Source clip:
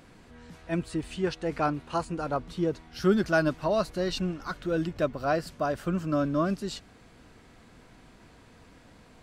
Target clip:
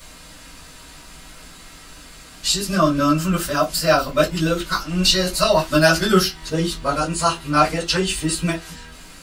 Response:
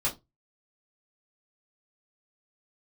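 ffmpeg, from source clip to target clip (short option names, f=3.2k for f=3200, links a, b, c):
-filter_complex "[0:a]areverse,crystalizer=i=10:c=0[a];[1:a]atrim=start_sample=2205,asetrate=48510,aresample=44100[b];[a][b]afir=irnorm=-1:irlink=0,volume=-1.5dB"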